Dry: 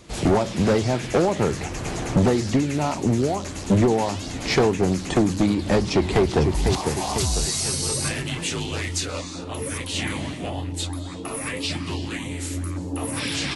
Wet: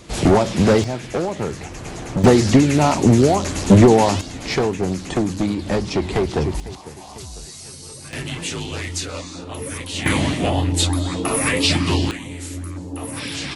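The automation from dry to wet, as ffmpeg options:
ffmpeg -i in.wav -af "asetnsamples=nb_out_samples=441:pad=0,asendcmd='0.84 volume volume -3dB;2.24 volume volume 8dB;4.21 volume volume -1dB;6.6 volume volume -12.5dB;8.13 volume volume 0dB;10.06 volume volume 10dB;12.11 volume volume -1.5dB',volume=5dB" out.wav

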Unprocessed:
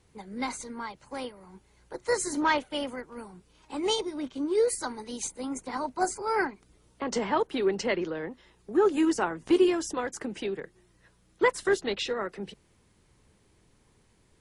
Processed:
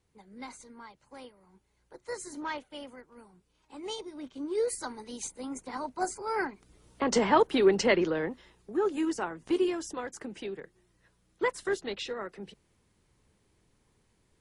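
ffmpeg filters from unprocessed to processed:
ffmpeg -i in.wav -af "volume=4dB,afade=type=in:start_time=3.87:duration=0.9:silence=0.446684,afade=type=in:start_time=6.41:duration=0.62:silence=0.398107,afade=type=out:start_time=8.2:duration=0.57:silence=0.334965" out.wav

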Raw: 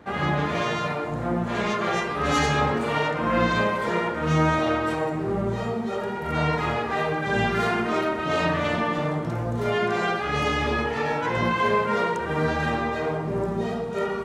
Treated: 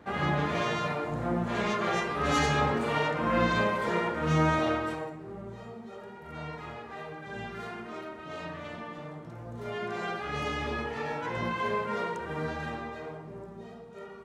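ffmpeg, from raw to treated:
ffmpeg -i in.wav -af "volume=3.5dB,afade=type=out:start_time=4.65:duration=0.53:silence=0.251189,afade=type=in:start_time=9.35:duration=0.88:silence=0.421697,afade=type=out:start_time=12.19:duration=1.27:silence=0.334965" out.wav

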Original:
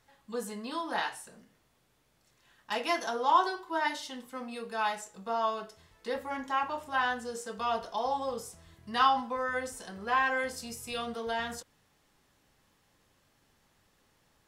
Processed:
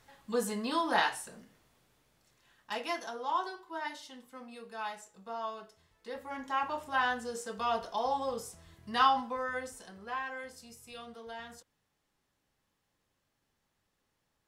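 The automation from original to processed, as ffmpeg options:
ffmpeg -i in.wav -af "volume=12dB,afade=type=out:start_time=0.93:duration=2.22:silence=0.237137,afade=type=in:start_time=6.11:duration=0.63:silence=0.421697,afade=type=out:start_time=9:duration=1.25:silence=0.298538" out.wav

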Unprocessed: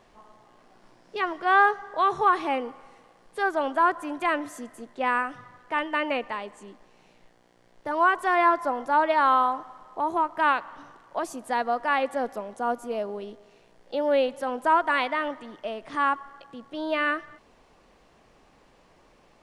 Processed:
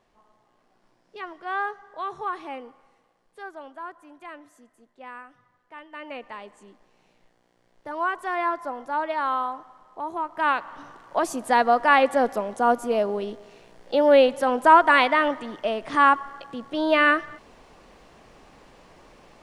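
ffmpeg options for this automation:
ffmpeg -i in.wav -af "volume=14dB,afade=type=out:start_time=2.65:duration=1.11:silence=0.446684,afade=type=in:start_time=5.88:duration=0.56:silence=0.281838,afade=type=in:start_time=10.18:duration=1.22:silence=0.251189" out.wav

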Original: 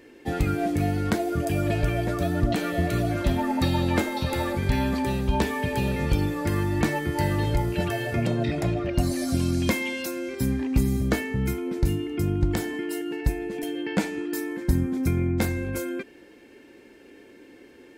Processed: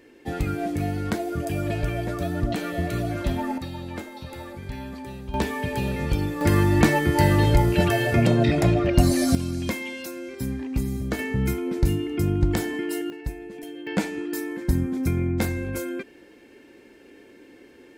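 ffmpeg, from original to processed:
ffmpeg -i in.wav -af "asetnsamples=nb_out_samples=441:pad=0,asendcmd='3.58 volume volume -11dB;5.34 volume volume -1dB;6.41 volume volume 6dB;9.35 volume volume -4dB;11.19 volume volume 2dB;13.1 volume volume -7dB;13.87 volume volume 0dB',volume=-2dB" out.wav

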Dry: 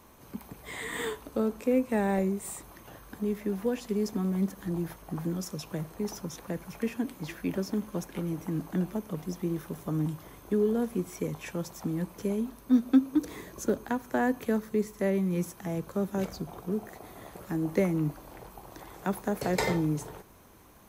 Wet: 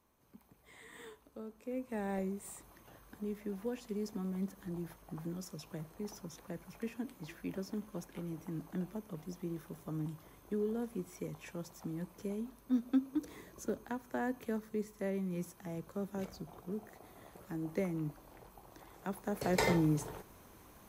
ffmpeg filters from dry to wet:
ffmpeg -i in.wav -af "volume=-2dB,afade=type=in:start_time=1.56:duration=0.61:silence=0.354813,afade=type=in:start_time=19.2:duration=0.46:silence=0.421697" out.wav

